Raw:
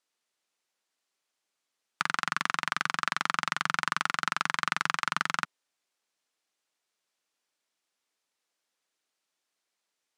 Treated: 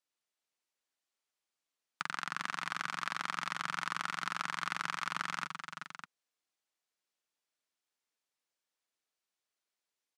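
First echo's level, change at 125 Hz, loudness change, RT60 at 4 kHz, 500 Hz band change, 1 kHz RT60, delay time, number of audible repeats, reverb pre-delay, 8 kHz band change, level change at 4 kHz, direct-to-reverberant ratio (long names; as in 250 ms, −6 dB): −11.5 dB, −7.0 dB, −8.0 dB, no reverb audible, −8.0 dB, no reverb audible, 117 ms, 3, no reverb audible, −7.5 dB, −7.5 dB, no reverb audible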